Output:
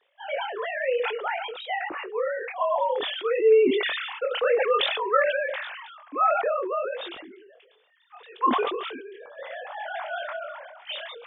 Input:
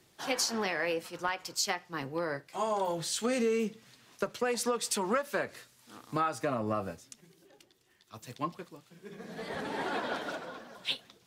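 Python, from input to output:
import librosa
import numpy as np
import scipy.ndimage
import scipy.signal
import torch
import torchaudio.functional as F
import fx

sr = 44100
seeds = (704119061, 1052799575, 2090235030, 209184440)

y = fx.sine_speech(x, sr)
y = fx.chorus_voices(y, sr, voices=2, hz=0.56, base_ms=23, depth_ms=4.5, mix_pct=40)
y = fx.sustainer(y, sr, db_per_s=37.0)
y = y * librosa.db_to_amplitude(9.0)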